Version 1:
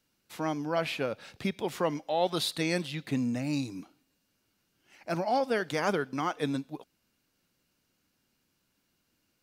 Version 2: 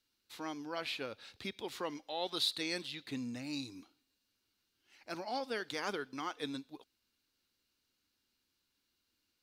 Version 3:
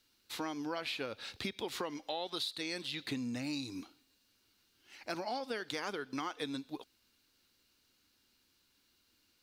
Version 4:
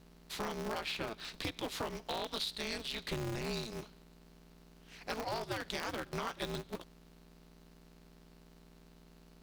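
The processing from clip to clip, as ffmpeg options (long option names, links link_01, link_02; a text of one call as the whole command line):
ffmpeg -i in.wav -af "equalizer=frequency=160:width_type=o:width=0.67:gain=-12,equalizer=frequency=630:width_type=o:width=0.67:gain=-6,equalizer=frequency=4000:width_type=o:width=0.67:gain=8,volume=-7.5dB" out.wav
ffmpeg -i in.wav -af "acompressor=threshold=-43dB:ratio=12,volume=8.5dB" out.wav
ffmpeg -i in.wav -af "aeval=exprs='val(0)+0.00126*(sin(2*PI*60*n/s)+sin(2*PI*2*60*n/s)/2+sin(2*PI*3*60*n/s)/3+sin(2*PI*4*60*n/s)/4+sin(2*PI*5*60*n/s)/5)':channel_layout=same,aeval=exprs='val(0)*sgn(sin(2*PI*110*n/s))':channel_layout=same" out.wav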